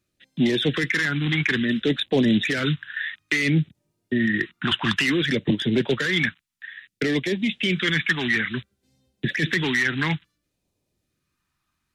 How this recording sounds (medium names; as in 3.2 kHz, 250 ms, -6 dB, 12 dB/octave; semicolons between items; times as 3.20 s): phasing stages 2, 0.58 Hz, lowest notch 490–1300 Hz